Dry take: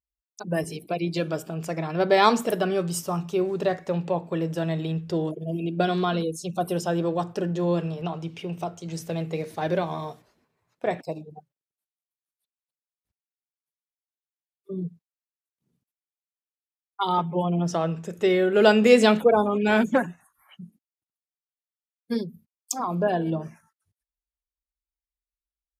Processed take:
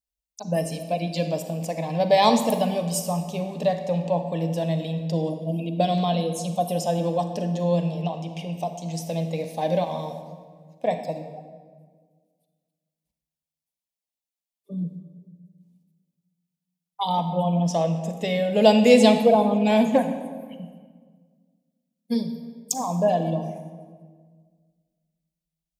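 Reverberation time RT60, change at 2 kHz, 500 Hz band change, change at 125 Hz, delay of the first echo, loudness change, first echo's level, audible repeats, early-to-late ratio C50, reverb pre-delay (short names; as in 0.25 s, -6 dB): 1.6 s, -5.0 dB, +1.5 dB, +3.0 dB, none, +1.5 dB, none, none, 9.0 dB, 35 ms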